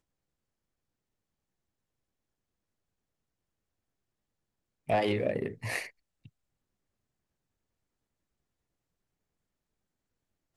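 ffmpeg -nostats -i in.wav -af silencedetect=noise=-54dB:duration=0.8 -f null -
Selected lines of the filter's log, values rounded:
silence_start: 0.00
silence_end: 4.88 | silence_duration: 4.88
silence_start: 6.28
silence_end: 10.56 | silence_duration: 4.28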